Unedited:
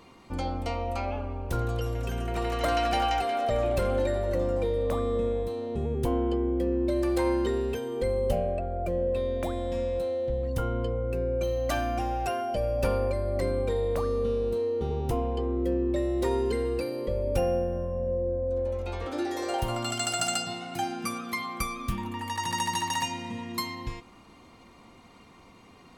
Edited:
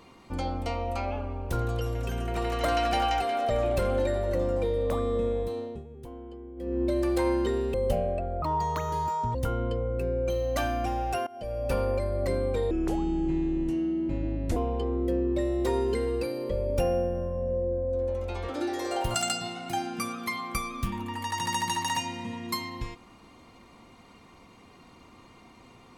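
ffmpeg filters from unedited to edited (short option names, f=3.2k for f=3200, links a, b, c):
-filter_complex "[0:a]asplit=10[a][b][c][d][e][f][g][h][i][j];[a]atrim=end=5.84,asetpts=PTS-STARTPTS,afade=t=out:st=5.58:d=0.26:silence=0.158489[k];[b]atrim=start=5.84:end=6.56,asetpts=PTS-STARTPTS,volume=-16dB[l];[c]atrim=start=6.56:end=7.742,asetpts=PTS-STARTPTS,afade=t=in:d=0.26:silence=0.158489[m];[d]atrim=start=8.138:end=8.824[n];[e]atrim=start=8.82:end=10.48,asetpts=PTS-STARTPTS,asetrate=78939,aresample=44100,atrim=end_sample=40897,asetpts=PTS-STARTPTS[o];[f]atrim=start=10.476:end=12.4,asetpts=PTS-STARTPTS,afade=t=out:st=1.92:d=0.004:c=hsin:silence=0.0944061[p];[g]atrim=start=12.4:end=13.844,asetpts=PTS-STARTPTS,afade=t=in:d=0.75:c=qsin:silence=0.0944061[q];[h]atrim=start=13.84:end=15.14,asetpts=PTS-STARTPTS,asetrate=30870,aresample=44100[r];[i]atrim=start=15.136:end=19.722[s];[j]atrim=start=20.198[t];[k][l][m]concat=n=3:v=0:a=1[u];[u][n]acrossfade=d=0.004:c1=hsin:c2=hsin[v];[v][o]acrossfade=d=0.004:c1=hsin:c2=hsin[w];[p][q]concat=n=2:v=0:a=1[x];[w][x]acrossfade=d=0.004:c1=hsin:c2=hsin[y];[y][r]acrossfade=d=0.004:c1=hsin:c2=hsin[z];[z][s]acrossfade=d=0.004:c1=hsin:c2=hsin[aa];[aa][t]acrossfade=d=0.004:c1=hsin:c2=hsin"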